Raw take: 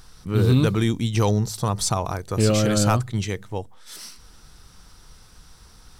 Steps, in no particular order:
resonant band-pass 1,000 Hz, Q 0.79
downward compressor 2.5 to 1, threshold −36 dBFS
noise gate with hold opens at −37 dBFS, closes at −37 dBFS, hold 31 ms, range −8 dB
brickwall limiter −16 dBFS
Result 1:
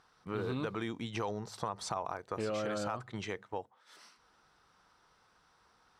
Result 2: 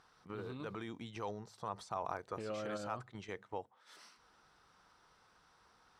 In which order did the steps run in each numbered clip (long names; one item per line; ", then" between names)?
resonant band-pass, then brickwall limiter, then downward compressor, then noise gate with hold
brickwall limiter, then downward compressor, then resonant band-pass, then noise gate with hold